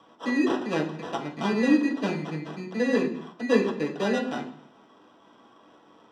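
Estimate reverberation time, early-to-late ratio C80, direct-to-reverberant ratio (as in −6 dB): 0.60 s, 12.0 dB, −3.5 dB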